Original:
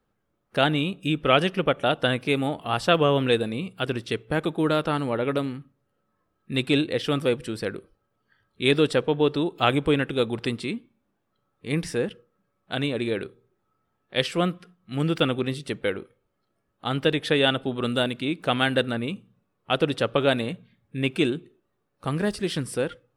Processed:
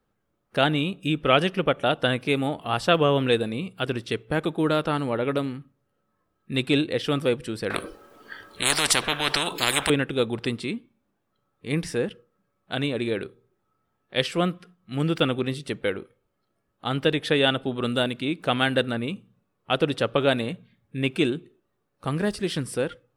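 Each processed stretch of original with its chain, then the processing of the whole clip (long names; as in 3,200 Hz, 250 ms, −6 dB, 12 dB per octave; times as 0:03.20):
0:07.70–0:09.90: low shelf with overshoot 210 Hz −11 dB, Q 1.5 + every bin compressed towards the loudest bin 10 to 1
whole clip: no processing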